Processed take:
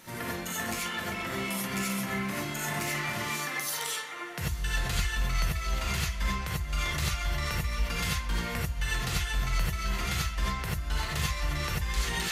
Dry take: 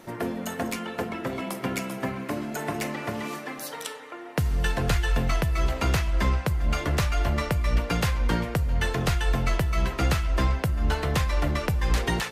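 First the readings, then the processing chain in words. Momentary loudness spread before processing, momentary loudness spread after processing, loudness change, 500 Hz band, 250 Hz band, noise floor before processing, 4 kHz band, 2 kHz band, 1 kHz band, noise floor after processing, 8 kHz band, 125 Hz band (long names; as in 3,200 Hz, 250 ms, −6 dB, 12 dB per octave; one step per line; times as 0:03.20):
7 LU, 3 LU, −4.0 dB, −9.0 dB, −6.5 dB, −39 dBFS, +1.0 dB, −0.5 dB, −4.0 dB, −37 dBFS, +3.0 dB, −6.5 dB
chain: guitar amp tone stack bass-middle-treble 5-5-5
in parallel at −2 dB: compressor whose output falls as the input rises −47 dBFS, ratio −1
on the sum: reverb whose tail is shaped and stops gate 110 ms rising, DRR −5 dB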